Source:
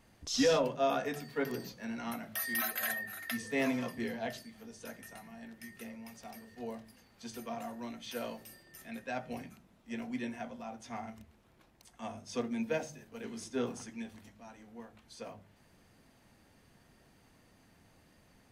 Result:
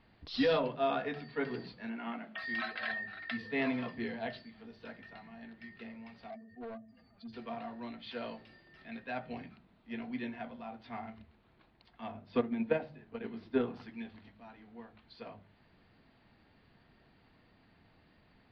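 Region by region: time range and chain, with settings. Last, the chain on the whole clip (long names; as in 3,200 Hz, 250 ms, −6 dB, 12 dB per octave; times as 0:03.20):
0:01.89–0:02.38: linear-phase brick-wall band-pass 170–3,500 Hz + slack as between gear wheels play −59.5 dBFS
0:06.30–0:07.33: expanding power law on the bin magnitudes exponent 1.9 + hollow resonant body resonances 660/1,200 Hz, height 15 dB, ringing for 65 ms + hard clipping −39.5 dBFS
0:12.11–0:13.74: low-pass filter 2,000 Hz 6 dB per octave + transient designer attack +8 dB, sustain 0 dB
whole clip: elliptic low-pass filter 4,400 Hz, stop band 40 dB; notch filter 540 Hz, Q 14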